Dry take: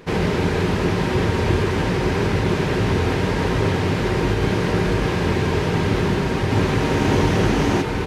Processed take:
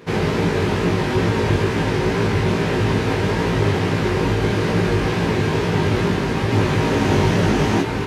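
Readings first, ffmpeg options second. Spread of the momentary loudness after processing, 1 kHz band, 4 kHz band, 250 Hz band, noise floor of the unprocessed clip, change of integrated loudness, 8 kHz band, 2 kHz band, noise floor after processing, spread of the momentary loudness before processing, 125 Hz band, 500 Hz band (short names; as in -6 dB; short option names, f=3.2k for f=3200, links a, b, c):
2 LU, +1.0 dB, +1.0 dB, +1.0 dB, -23 dBFS, +1.0 dB, +1.0 dB, +1.0 dB, -22 dBFS, 2 LU, +1.0 dB, +1.0 dB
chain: -af "highpass=62,flanger=delay=17.5:depth=2.4:speed=2.3,volume=4dB"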